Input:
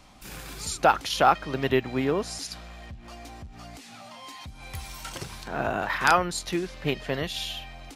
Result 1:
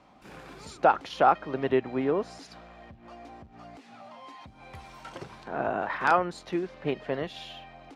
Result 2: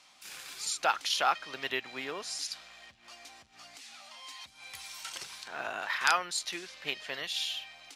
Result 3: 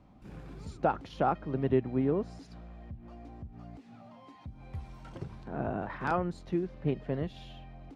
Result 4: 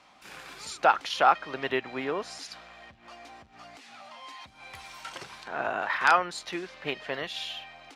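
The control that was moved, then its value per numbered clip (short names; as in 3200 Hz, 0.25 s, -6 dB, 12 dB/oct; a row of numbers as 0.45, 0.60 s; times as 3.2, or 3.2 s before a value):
band-pass, frequency: 530, 4600, 150, 1500 Hz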